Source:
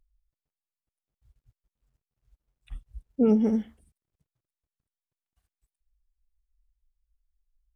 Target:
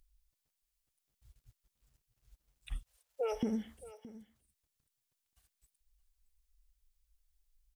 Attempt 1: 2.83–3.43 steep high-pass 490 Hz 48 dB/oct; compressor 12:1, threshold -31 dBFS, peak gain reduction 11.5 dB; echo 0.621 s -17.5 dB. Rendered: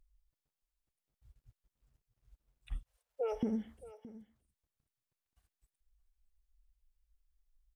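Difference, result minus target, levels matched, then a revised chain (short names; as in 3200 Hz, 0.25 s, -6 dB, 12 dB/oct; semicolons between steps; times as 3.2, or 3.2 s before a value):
4000 Hz band -7.5 dB
2.83–3.43 steep high-pass 490 Hz 48 dB/oct; compressor 12:1, threshold -31 dBFS, peak gain reduction 11.5 dB; high shelf 2200 Hz +11 dB; echo 0.621 s -17.5 dB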